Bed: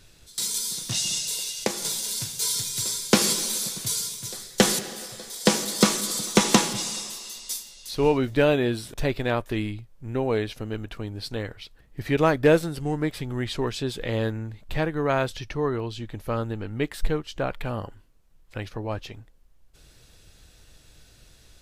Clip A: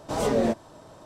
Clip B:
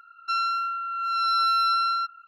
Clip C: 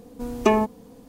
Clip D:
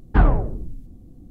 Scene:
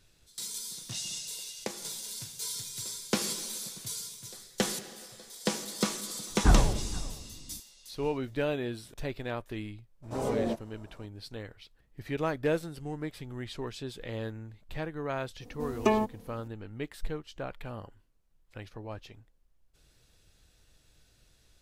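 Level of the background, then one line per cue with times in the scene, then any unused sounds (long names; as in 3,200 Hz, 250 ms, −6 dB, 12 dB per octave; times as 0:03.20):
bed −10.5 dB
0:06.30: mix in D −6 dB + single-tap delay 475 ms −19 dB
0:10.02: mix in A −7 dB, fades 0.02 s + parametric band 3,200 Hz −6 dB 2.5 octaves
0:15.40: mix in C −6.5 dB
not used: B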